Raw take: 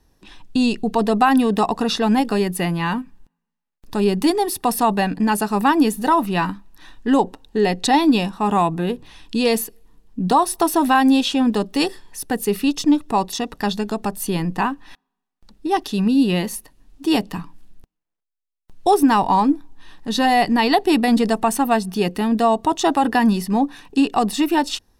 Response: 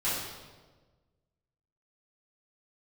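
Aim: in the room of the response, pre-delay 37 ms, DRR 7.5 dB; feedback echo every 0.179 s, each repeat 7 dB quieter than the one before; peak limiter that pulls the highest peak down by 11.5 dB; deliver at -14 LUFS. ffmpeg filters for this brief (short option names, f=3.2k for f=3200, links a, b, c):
-filter_complex "[0:a]alimiter=limit=-16.5dB:level=0:latency=1,aecho=1:1:179|358|537|716|895:0.447|0.201|0.0905|0.0407|0.0183,asplit=2[a][b];[1:a]atrim=start_sample=2205,adelay=37[c];[b][c]afir=irnorm=-1:irlink=0,volume=-16.5dB[d];[a][d]amix=inputs=2:normalize=0,volume=10dB"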